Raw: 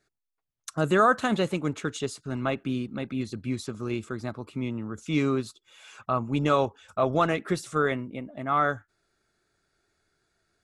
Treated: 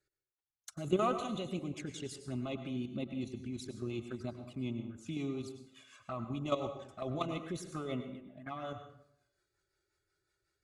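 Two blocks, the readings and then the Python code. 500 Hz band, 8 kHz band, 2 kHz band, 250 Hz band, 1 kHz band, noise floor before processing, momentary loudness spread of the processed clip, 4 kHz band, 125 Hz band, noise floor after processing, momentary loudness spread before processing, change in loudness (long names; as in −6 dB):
−11.0 dB, −9.0 dB, −18.5 dB, −9.5 dB, −14.0 dB, −83 dBFS, 12 LU, −9.0 dB, −10.0 dB, below −85 dBFS, 12 LU, −11.5 dB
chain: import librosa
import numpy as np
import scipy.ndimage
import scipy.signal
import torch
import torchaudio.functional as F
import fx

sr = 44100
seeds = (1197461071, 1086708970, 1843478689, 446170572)

y = fx.diode_clip(x, sr, knee_db=-11.0)
y = fx.low_shelf(y, sr, hz=86.0, db=6.5)
y = fx.notch_comb(y, sr, f0_hz=460.0)
y = fx.level_steps(y, sr, step_db=11)
y = fx.rotary(y, sr, hz=5.5)
y = fx.env_flanger(y, sr, rest_ms=2.2, full_db=-33.5)
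y = fx.low_shelf(y, sr, hz=310.0, db=-6.0)
y = fx.rev_plate(y, sr, seeds[0], rt60_s=0.72, hf_ratio=0.65, predelay_ms=85, drr_db=8.0)
y = F.gain(torch.from_numpy(y), 1.0).numpy()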